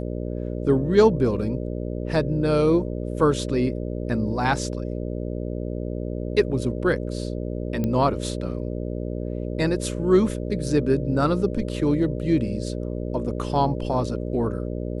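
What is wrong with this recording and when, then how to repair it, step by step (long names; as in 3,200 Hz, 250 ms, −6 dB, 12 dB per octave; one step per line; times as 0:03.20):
mains buzz 60 Hz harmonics 10 −29 dBFS
0:07.84: click −14 dBFS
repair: click removal
hum removal 60 Hz, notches 10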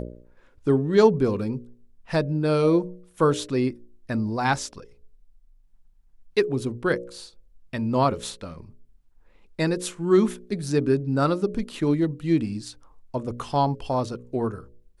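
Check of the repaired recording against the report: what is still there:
none of them is left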